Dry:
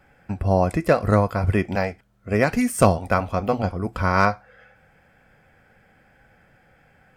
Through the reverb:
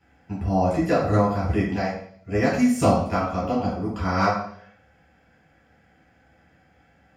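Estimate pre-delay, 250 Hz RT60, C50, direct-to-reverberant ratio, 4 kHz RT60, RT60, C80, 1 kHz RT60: 3 ms, 0.65 s, 3.5 dB, -7.0 dB, 0.65 s, 0.60 s, 7.5 dB, 0.55 s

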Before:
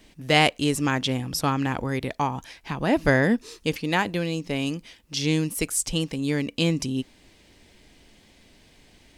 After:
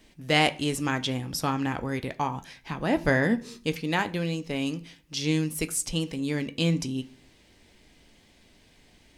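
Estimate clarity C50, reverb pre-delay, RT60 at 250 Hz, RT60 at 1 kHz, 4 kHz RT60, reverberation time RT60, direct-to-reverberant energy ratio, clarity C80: 19.0 dB, 13 ms, 0.65 s, 0.40 s, 0.50 s, 0.45 s, 9.5 dB, 23.5 dB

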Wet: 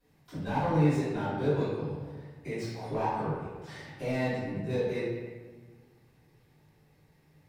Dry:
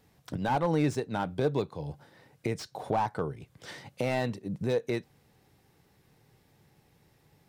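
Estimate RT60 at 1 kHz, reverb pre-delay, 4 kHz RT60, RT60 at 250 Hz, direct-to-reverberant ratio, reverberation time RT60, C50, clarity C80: 1.4 s, 3 ms, 0.95 s, 1.8 s, -16.5 dB, 1.5 s, -2.0 dB, 1.0 dB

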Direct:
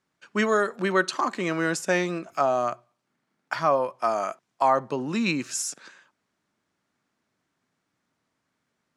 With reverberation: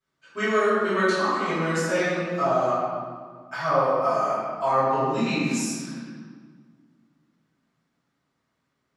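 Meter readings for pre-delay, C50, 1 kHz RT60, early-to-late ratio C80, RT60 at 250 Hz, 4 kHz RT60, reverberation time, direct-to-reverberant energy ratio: 3 ms, -3.5 dB, 1.7 s, -1.0 dB, 2.4 s, 1.2 s, 1.8 s, -16.5 dB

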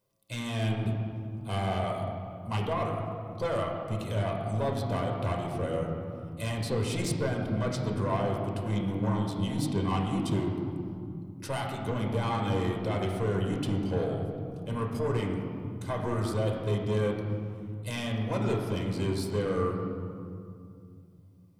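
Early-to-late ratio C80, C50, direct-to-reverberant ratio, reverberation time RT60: 4.5 dB, 3.0 dB, 0.0 dB, 2.4 s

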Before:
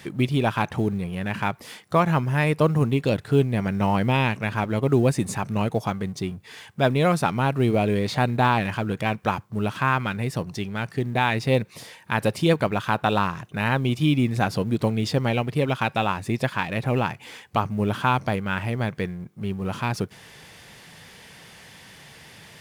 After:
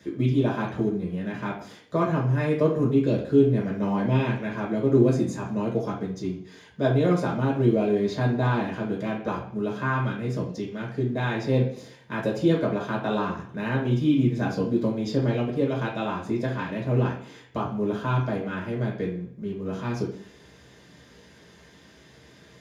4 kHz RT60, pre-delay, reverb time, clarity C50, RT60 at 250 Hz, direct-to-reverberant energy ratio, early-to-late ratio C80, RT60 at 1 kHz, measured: 0.60 s, 3 ms, 0.55 s, 5.5 dB, 0.60 s, -4.0 dB, 10.5 dB, 0.55 s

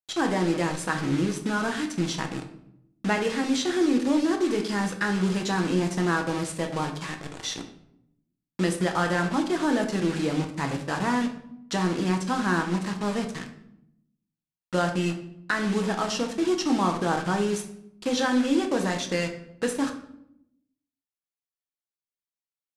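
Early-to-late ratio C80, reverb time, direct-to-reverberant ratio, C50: 12.5 dB, 0.75 s, 3.0 dB, 9.5 dB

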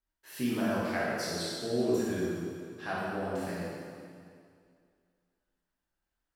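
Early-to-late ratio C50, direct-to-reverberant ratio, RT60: -3.5 dB, -8.5 dB, 2.2 s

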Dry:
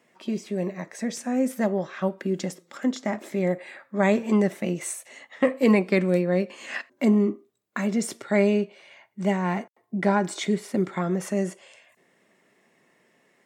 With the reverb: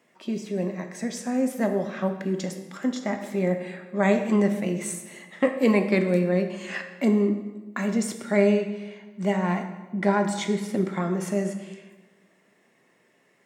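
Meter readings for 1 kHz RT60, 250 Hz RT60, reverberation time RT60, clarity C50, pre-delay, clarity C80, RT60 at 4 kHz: 1.2 s, 1.4 s, 1.3 s, 8.5 dB, 13 ms, 10.5 dB, 0.95 s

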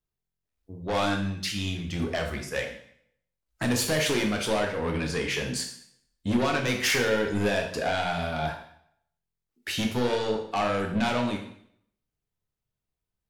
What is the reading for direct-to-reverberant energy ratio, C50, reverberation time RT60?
1.5 dB, 6.0 dB, 0.65 s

